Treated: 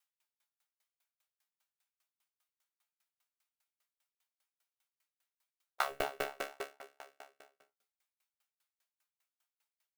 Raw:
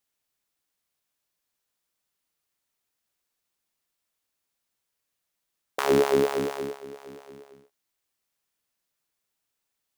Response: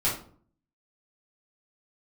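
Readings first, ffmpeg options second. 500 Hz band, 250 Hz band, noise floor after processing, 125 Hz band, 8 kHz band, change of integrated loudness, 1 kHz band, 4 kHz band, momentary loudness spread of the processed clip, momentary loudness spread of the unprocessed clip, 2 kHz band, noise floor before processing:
-18.5 dB, -24.5 dB, under -85 dBFS, -22.0 dB, -11.0 dB, -14.0 dB, -8.5 dB, -8.5 dB, 20 LU, 20 LU, -6.0 dB, -82 dBFS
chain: -filter_complex "[0:a]highpass=880,volume=21dB,asoftclip=hard,volume=-21dB,asplit=2[a][b];[b]adelay=13,volume=-3dB[c];[a][c]amix=inputs=2:normalize=0,asplit=2[d][e];[1:a]atrim=start_sample=2205,lowpass=3.4k[f];[e][f]afir=irnorm=-1:irlink=0,volume=-10.5dB[g];[d][g]amix=inputs=2:normalize=0,aeval=exprs='val(0)*pow(10,-37*if(lt(mod(5*n/s,1),2*abs(5)/1000),1-mod(5*n/s,1)/(2*abs(5)/1000),(mod(5*n/s,1)-2*abs(5)/1000)/(1-2*abs(5)/1000))/20)':c=same,volume=1dB"

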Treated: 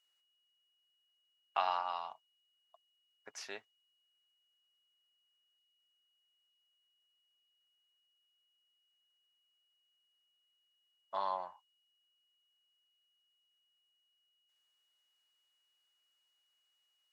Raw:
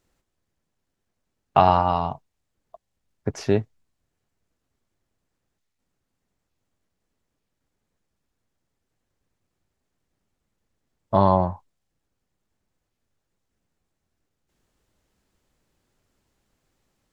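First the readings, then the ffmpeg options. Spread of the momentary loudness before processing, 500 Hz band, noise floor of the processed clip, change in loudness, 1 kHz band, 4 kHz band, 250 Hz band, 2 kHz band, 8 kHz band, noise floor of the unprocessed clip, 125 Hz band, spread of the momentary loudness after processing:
14 LU, -22.5 dB, -79 dBFS, -17.5 dB, -16.0 dB, -8.5 dB, -37.5 dB, -9.5 dB, n/a, -79 dBFS, under -40 dB, 15 LU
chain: -af "highpass=1.3k,aeval=exprs='val(0)+0.000398*sin(2*PI*2900*n/s)':c=same,volume=-8.5dB"

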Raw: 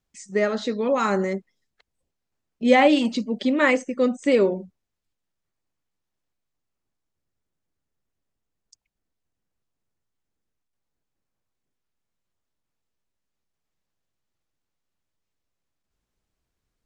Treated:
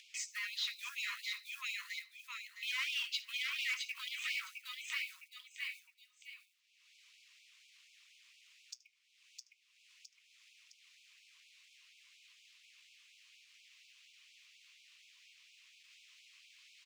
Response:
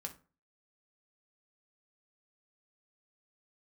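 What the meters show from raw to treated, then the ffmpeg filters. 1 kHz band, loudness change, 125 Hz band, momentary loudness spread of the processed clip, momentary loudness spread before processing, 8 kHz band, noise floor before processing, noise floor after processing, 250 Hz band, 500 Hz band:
-27.5 dB, -18.0 dB, n/a, 21 LU, 11 LU, -3.0 dB, -82 dBFS, -74 dBFS, under -40 dB, under -40 dB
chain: -filter_complex "[0:a]flanger=delay=6.6:depth=2:regen=-67:speed=0.27:shape=triangular,highshelf=f=1.9k:t=q:w=3:g=8.5,aecho=1:1:661|1322|1983:0.531|0.122|0.0281,asoftclip=type=tanh:threshold=-22.5dB,highpass=340,lowpass=5.4k,acompressor=threshold=-36dB:ratio=6,asplit=2[a][b];[1:a]atrim=start_sample=2205,adelay=74[c];[b][c]afir=irnorm=-1:irlink=0,volume=-16.5dB[d];[a][d]amix=inputs=2:normalize=0,acrusher=bits=5:mode=log:mix=0:aa=0.000001,acompressor=mode=upward:threshold=-47dB:ratio=2.5,afftfilt=real='re*gte(b*sr/1024,940*pow(2200/940,0.5+0.5*sin(2*PI*4.2*pts/sr)))':imag='im*gte(b*sr/1024,940*pow(2200/940,0.5+0.5*sin(2*PI*4.2*pts/sr)))':win_size=1024:overlap=0.75,volume=2dB"

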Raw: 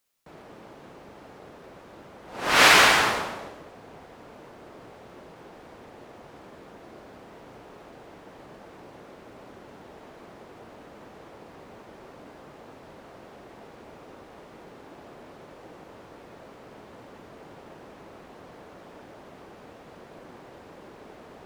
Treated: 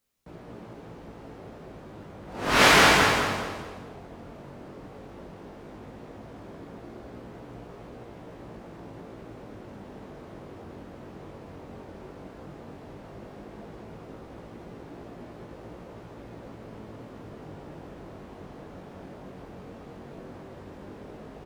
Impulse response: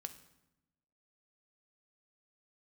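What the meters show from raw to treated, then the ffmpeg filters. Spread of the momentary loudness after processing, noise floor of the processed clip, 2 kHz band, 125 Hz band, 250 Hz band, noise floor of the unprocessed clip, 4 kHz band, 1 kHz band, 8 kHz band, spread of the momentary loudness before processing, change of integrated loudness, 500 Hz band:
20 LU, -46 dBFS, -1.5 dB, +8.0 dB, +5.5 dB, -49 dBFS, -2.0 dB, -0.5 dB, -2.0 dB, 19 LU, -1.5 dB, +2.0 dB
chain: -af "lowshelf=f=340:g=12,flanger=delay=17:depth=4.7:speed=0.13,aecho=1:1:212|424|636|848:0.447|0.152|0.0516|0.0176"

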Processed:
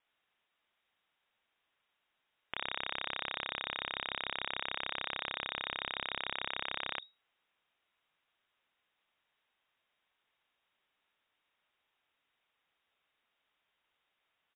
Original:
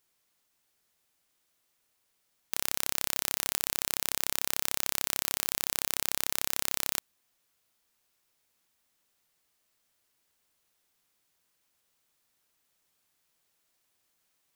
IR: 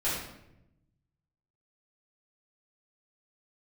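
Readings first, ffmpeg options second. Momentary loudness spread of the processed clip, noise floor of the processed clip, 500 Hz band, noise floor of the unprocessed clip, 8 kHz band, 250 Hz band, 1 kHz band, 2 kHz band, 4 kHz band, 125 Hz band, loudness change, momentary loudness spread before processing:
2 LU, -83 dBFS, -2.5 dB, -76 dBFS, under -40 dB, -6.5 dB, +0.5 dB, +1.0 dB, -3.0 dB, -8.0 dB, -8.5 dB, 2 LU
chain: -filter_complex "[0:a]acrossover=split=250[a][b];[a]adelay=40[c];[c][b]amix=inputs=2:normalize=0,lowpass=f=3.2k:t=q:w=0.5098,lowpass=f=3.2k:t=q:w=0.6013,lowpass=f=3.2k:t=q:w=0.9,lowpass=f=3.2k:t=q:w=2.563,afreqshift=-3800,volume=1dB"

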